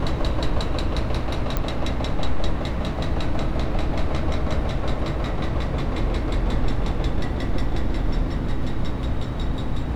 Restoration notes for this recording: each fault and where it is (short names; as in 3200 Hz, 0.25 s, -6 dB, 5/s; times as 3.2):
1.57 pop -10 dBFS